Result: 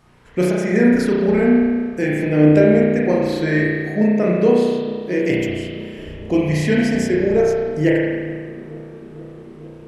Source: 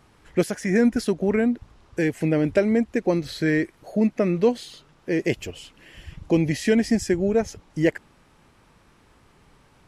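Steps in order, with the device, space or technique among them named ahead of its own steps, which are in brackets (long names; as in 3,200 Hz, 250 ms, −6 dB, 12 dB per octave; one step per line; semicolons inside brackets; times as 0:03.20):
dub delay into a spring reverb (feedback echo with a low-pass in the loop 448 ms, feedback 82%, low-pass 1,200 Hz, level −18.5 dB; spring reverb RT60 1.6 s, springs 33 ms, chirp 60 ms, DRR −5 dB)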